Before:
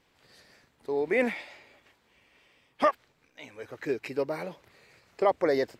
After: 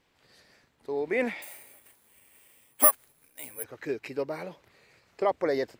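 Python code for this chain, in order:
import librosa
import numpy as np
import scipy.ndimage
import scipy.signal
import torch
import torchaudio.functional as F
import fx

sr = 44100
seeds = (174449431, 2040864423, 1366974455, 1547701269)

y = fx.resample_bad(x, sr, factor=4, down='none', up='zero_stuff', at=(1.42, 3.64))
y = y * librosa.db_to_amplitude(-2.0)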